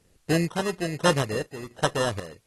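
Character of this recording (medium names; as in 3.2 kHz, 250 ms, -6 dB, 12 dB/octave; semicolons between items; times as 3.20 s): aliases and images of a low sample rate 2.3 kHz, jitter 0%; random-step tremolo 4.1 Hz, depth 80%; a quantiser's noise floor 12-bit, dither triangular; AAC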